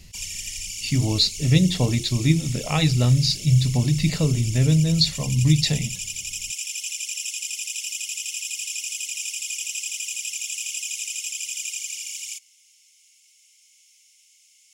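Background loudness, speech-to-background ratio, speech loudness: -29.5 LUFS, 9.0 dB, -20.5 LUFS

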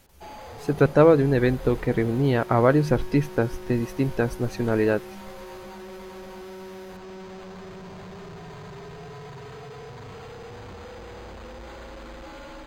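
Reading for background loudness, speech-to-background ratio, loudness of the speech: -41.0 LUFS, 18.5 dB, -22.5 LUFS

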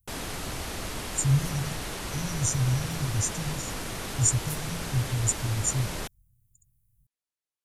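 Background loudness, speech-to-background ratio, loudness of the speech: -34.5 LUFS, 6.0 dB, -28.5 LUFS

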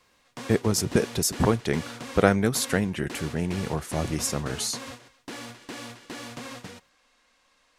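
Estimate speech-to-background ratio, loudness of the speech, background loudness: 14.0 dB, -26.0 LUFS, -40.0 LUFS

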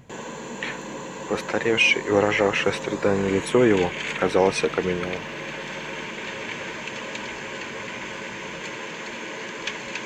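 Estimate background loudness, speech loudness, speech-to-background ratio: -32.5 LUFS, -22.5 LUFS, 10.0 dB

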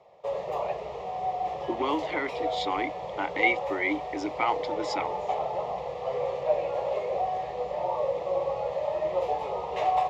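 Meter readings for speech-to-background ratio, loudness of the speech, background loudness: 0.5 dB, -30.5 LUFS, -31.0 LUFS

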